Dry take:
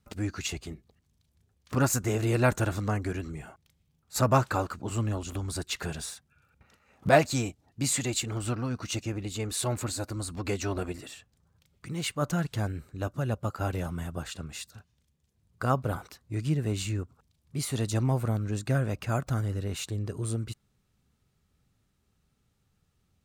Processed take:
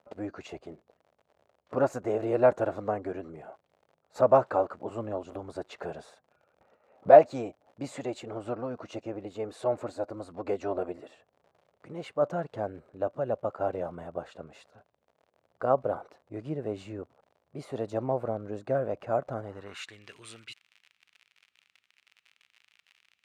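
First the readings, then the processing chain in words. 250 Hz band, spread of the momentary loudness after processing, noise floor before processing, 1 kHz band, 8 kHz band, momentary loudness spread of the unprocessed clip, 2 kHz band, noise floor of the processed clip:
-5.0 dB, 21 LU, -73 dBFS, +2.5 dB, under -20 dB, 14 LU, -7.5 dB, -80 dBFS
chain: crackle 72/s -41 dBFS; band-pass sweep 590 Hz -> 2500 Hz, 19.38–20.01; gain +8 dB

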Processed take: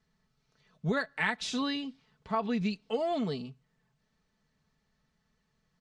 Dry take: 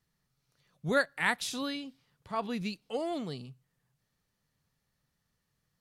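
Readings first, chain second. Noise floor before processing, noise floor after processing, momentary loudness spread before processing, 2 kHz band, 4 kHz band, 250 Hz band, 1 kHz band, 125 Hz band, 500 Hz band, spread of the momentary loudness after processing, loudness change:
-81 dBFS, -77 dBFS, 13 LU, -1.5 dB, +1.0 dB, +4.0 dB, +1.0 dB, +4.0 dB, +1.0 dB, 8 LU, +1.0 dB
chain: LPF 7700 Hz 24 dB/oct; high shelf 4700 Hz -7.5 dB; comb 4.6 ms, depth 59%; compressor 6:1, threshold -30 dBFS, peak gain reduction 9 dB; gain +4 dB

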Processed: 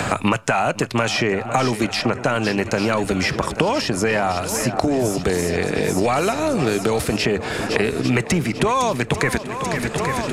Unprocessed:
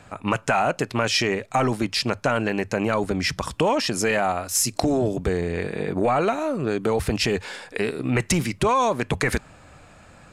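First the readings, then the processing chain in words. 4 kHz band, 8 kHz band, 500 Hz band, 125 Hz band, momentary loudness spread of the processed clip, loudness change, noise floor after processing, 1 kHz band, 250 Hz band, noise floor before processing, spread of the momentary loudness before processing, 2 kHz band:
+2.0 dB, +0.5 dB, +3.0 dB, +4.0 dB, 2 LU, +3.0 dB, -31 dBFS, +2.5 dB, +4.0 dB, -50 dBFS, 5 LU, +4.0 dB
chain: on a send: swung echo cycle 0.839 s, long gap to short 1.5:1, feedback 57%, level -15.5 dB; on the sum: three-band squash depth 100%; gain +2 dB

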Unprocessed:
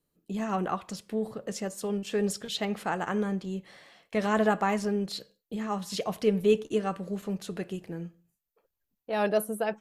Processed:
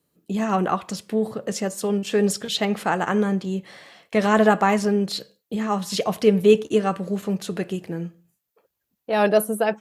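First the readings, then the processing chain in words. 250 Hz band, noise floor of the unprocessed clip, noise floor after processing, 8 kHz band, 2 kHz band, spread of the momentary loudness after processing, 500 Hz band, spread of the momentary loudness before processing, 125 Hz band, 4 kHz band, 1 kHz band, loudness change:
+8.0 dB, -83 dBFS, -80 dBFS, +8.0 dB, +8.0 dB, 12 LU, +8.0 dB, 12 LU, +8.0 dB, +8.0 dB, +8.0 dB, +8.0 dB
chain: HPF 80 Hz; gain +8 dB

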